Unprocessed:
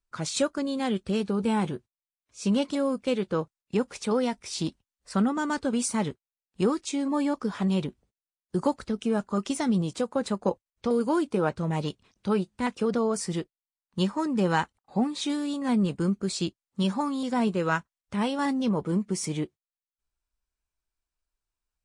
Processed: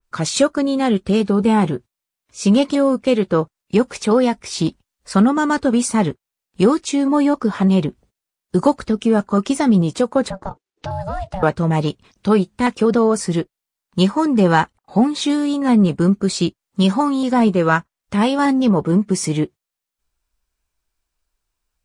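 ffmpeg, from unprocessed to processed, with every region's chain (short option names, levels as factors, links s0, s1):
-filter_complex "[0:a]asettb=1/sr,asplit=3[s0][s1][s2];[s0]atrim=end=10.304[s3];[s1]atrim=start=10.3:end=11.43,asetpts=PTS-STARTPTS,afade=t=in:d=0.004:c=qsin,afade=t=out:st=1.126:d=0.004:c=qsin,lowpass=6600,acompressor=threshold=0.0282:ratio=4:attack=3.2:release=140:knee=1:detection=peak,aeval=exprs='val(0)*sin(2*PI*380*n/s)':c=same[s4];[s2]atrim=start=11.426[s5];[s3][s4]acrossfade=d=0.004:c1=hsin:c2=qsin[s6];[s6][s5]acrossfade=d=0.004:c1=qsin:c2=hsin,acontrast=81,adynamicequalizer=threshold=0.0112:dfrequency=2400:dqfactor=0.7:tfrequency=2400:tqfactor=0.7:attack=5:release=100:ratio=0.375:range=3:mode=cutabove:tftype=highshelf,volume=1.58"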